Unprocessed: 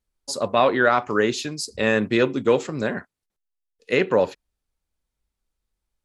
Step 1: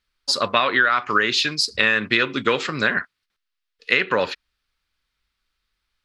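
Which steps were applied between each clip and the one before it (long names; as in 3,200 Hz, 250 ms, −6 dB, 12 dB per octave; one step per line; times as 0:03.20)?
flat-topped bell 2,400 Hz +14 dB 2.5 octaves
downward compressor 10 to 1, threshold −14 dBFS, peak gain reduction 11.5 dB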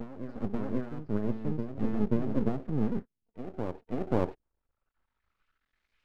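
low-pass filter sweep 220 Hz → 2,600 Hz, 0:03.84–0:06.01
half-wave rectification
backwards echo 534 ms −7.5 dB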